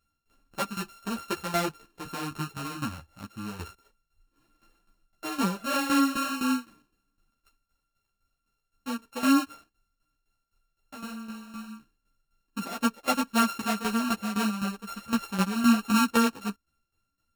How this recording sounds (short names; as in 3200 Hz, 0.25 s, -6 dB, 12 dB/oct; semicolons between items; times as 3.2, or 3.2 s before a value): a buzz of ramps at a fixed pitch in blocks of 32 samples; tremolo saw down 3.9 Hz, depth 75%; a shimmering, thickened sound